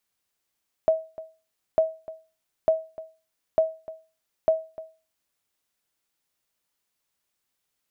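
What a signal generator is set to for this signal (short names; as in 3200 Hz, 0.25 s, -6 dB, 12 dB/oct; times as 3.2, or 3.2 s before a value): sonar ping 642 Hz, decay 0.33 s, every 0.90 s, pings 5, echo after 0.30 s, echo -18 dB -12 dBFS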